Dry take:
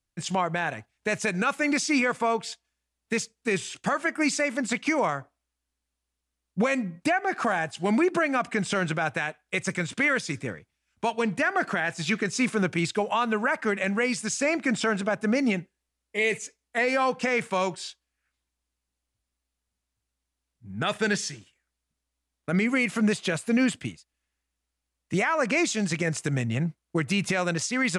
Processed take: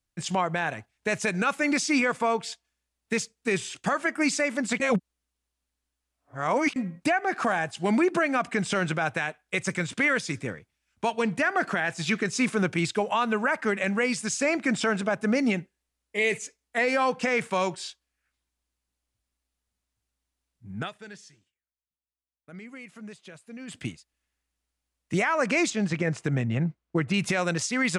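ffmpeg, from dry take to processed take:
-filter_complex "[0:a]asettb=1/sr,asplit=3[a][b][c];[a]atrim=end=25.704[d];[b]atrim=start=25.7:end=27.14,asetpts=PTS-STARTPTS,afade=t=in:d=0.004:c=qsin,afade=t=out:st=1.436:d=0.004:c=qsin,aemphasis=mode=reproduction:type=75fm[e];[c]atrim=start=27.136[f];[d][e]acrossfade=d=0.004:c1=hsin:c2=qsin[g];[g][f]acrossfade=d=0.004:c1=qsin:c2=hsin,asplit=5[h][i][j][k][l];[h]atrim=end=4.802[m];[i]atrim=start=4.798:end=6.762,asetpts=PTS-STARTPTS,areverse[n];[j]atrim=start=6.758:end=20.91,asetpts=PTS-STARTPTS,afade=t=out:st=14.012:d=0.14:silence=0.112202[o];[k]atrim=start=20.91:end=23.67,asetpts=PTS-STARTPTS,volume=-19dB[p];[l]atrim=start=23.67,asetpts=PTS-STARTPTS,afade=t=in:d=0.14:silence=0.112202[q];[m][n]acrossfade=d=0.004:c1=hsin:c2=hsin[r];[o][p][q]concat=n=3:v=0:a=1[s];[r][s]acrossfade=d=0.004:c1=hsin:c2=hsin"

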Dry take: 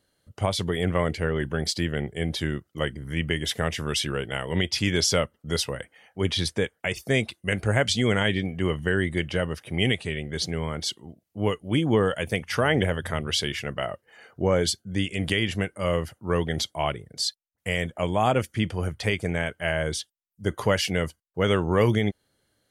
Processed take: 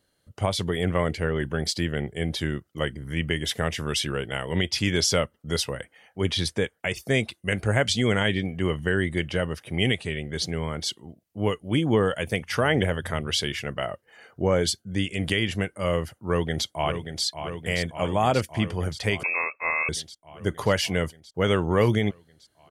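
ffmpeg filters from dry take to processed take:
-filter_complex "[0:a]asplit=2[a][b];[b]afade=t=in:st=16.16:d=0.01,afade=t=out:st=17.24:d=0.01,aecho=0:1:580|1160|1740|2320|2900|3480|4060|4640|5220|5800|6380|6960:0.375837|0.281878|0.211409|0.158556|0.118917|0.089188|0.066891|0.0501682|0.0376262|0.0282196|0.0211647|0.0158735[c];[a][c]amix=inputs=2:normalize=0,asettb=1/sr,asplit=3[d][e][f];[d]atrim=end=19.234[g];[e]atrim=start=19.23:end=19.89,asetpts=PTS-STARTPTS,afade=t=in:d=0.004:c=qsin,afade=t=out:st=0.656:d=0.004:c=qsin,lowpass=f=2.3k:t=q:w=0.5098,lowpass=f=2.3k:t=q:w=0.6013,lowpass=f=2.3k:t=q:w=0.9,lowpass=f=2.3k:t=q:w=2.563,afreqshift=-2700[h];[f]atrim=start=19.886[i];[g][h]acrossfade=d=0.004:c1=hsin:c2=qsin[j];[j][i]acrossfade=d=0.004:c1=qsin:c2=hsin"

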